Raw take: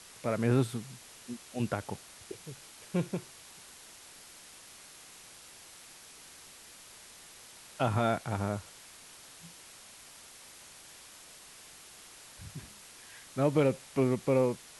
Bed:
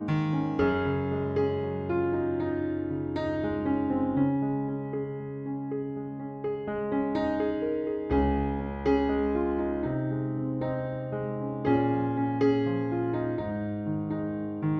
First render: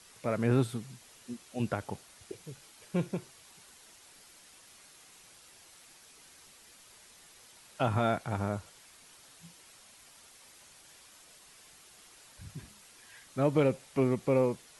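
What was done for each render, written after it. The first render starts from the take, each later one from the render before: denoiser 6 dB, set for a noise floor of -53 dBFS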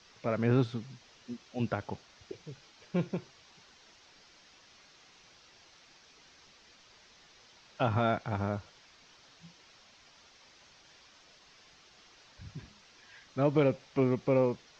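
steep low-pass 6100 Hz 48 dB/oct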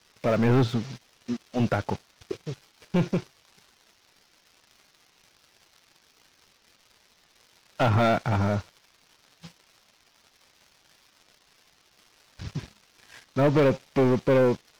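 sample leveller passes 3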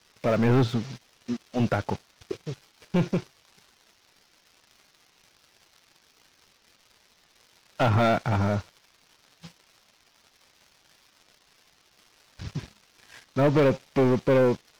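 nothing audible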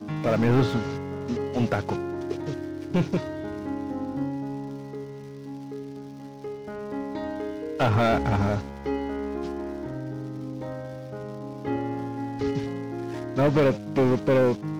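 add bed -4 dB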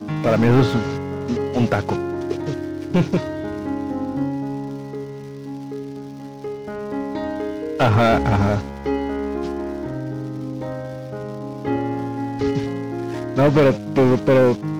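gain +6 dB

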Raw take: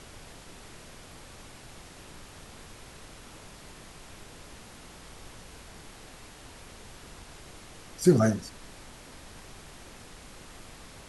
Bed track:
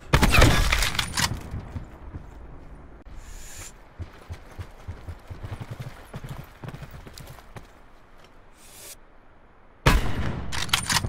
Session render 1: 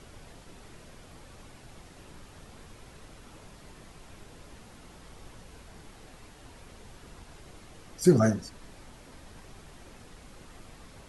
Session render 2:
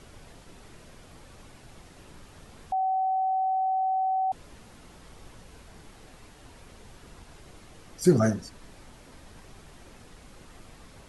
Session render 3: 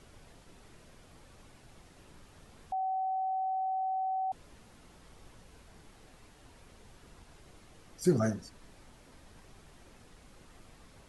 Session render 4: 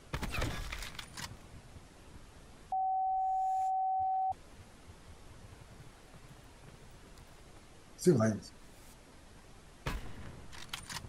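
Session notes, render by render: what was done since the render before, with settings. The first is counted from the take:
denoiser 6 dB, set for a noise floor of -49 dBFS
2.72–4.32 bleep 759 Hz -23 dBFS
gain -6.5 dB
add bed track -20 dB

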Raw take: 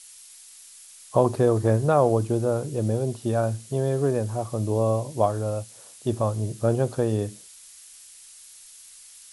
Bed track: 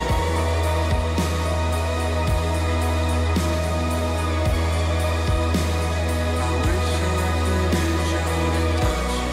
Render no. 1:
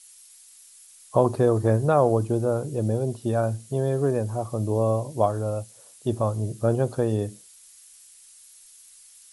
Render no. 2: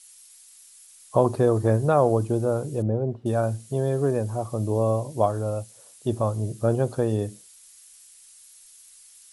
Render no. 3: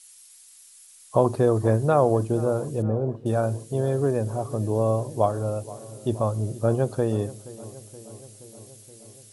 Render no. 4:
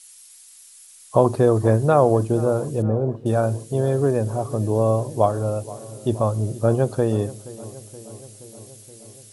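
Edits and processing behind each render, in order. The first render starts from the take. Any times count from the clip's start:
denoiser 6 dB, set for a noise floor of -48 dBFS
2.82–3.26 LPF 1400 Hz
darkening echo 0.474 s, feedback 70%, low-pass 2100 Hz, level -18 dB
gain +3.5 dB

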